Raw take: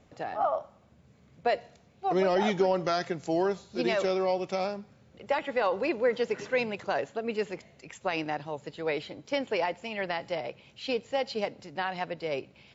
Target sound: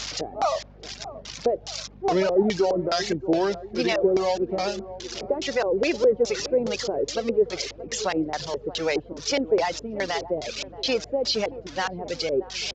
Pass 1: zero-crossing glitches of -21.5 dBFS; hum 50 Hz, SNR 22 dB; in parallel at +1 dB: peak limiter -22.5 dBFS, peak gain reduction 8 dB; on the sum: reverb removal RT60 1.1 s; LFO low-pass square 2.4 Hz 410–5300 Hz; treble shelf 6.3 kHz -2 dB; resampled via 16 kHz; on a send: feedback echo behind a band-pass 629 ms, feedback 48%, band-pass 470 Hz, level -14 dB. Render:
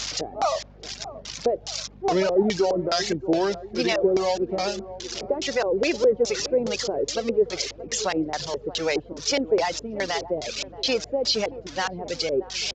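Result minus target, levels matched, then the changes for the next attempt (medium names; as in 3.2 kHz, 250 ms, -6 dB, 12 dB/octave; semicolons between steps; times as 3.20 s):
8 kHz band +3.0 dB
change: treble shelf 6.3 kHz -9 dB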